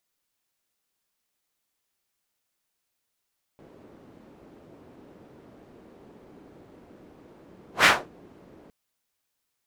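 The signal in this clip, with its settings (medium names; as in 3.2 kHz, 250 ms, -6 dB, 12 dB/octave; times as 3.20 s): whoosh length 5.11 s, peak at 4.26 s, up 0.13 s, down 0.26 s, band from 330 Hz, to 1.8 kHz, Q 1.2, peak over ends 36 dB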